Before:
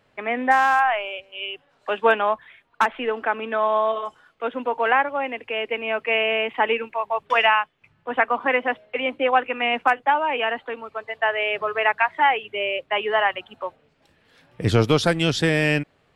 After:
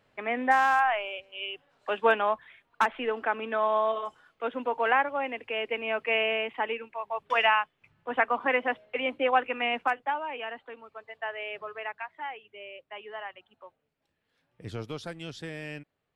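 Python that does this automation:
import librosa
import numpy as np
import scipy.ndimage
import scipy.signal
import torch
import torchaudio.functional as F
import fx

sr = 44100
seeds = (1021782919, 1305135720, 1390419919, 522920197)

y = fx.gain(x, sr, db=fx.line((6.24, -5.0), (6.82, -11.5), (7.49, -5.0), (9.56, -5.0), (10.38, -13.0), (11.58, -13.0), (12.12, -19.0)))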